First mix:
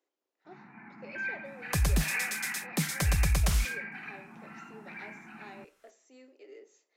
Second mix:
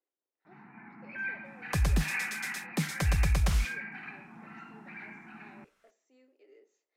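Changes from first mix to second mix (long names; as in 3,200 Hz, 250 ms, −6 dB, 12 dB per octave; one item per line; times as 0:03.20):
speech −8.5 dB
master: add high-shelf EQ 6,000 Hz −9.5 dB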